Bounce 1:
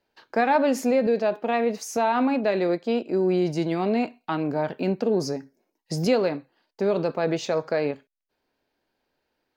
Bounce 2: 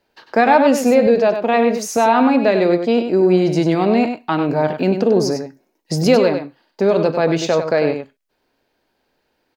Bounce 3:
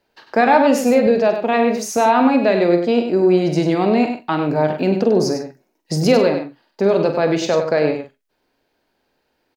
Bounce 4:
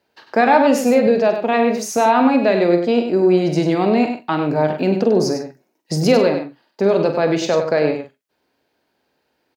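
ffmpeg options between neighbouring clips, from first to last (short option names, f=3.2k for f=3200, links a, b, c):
-af "aecho=1:1:98:0.398,volume=8dB"
-filter_complex "[0:a]asplit=2[a][b];[b]adelay=46,volume=-10dB[c];[a][c]amix=inputs=2:normalize=0,volume=-1dB"
-af "highpass=72"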